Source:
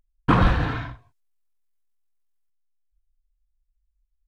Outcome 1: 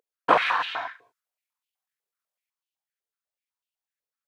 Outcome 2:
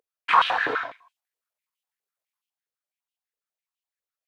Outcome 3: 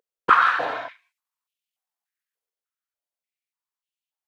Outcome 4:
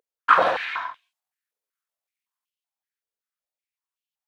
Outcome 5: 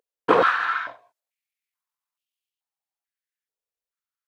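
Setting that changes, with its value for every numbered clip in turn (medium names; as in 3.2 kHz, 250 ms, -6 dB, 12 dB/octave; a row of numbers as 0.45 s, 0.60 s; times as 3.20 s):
step-sequenced high-pass, rate: 8 Hz, 12 Hz, 3.4 Hz, 5.3 Hz, 2.3 Hz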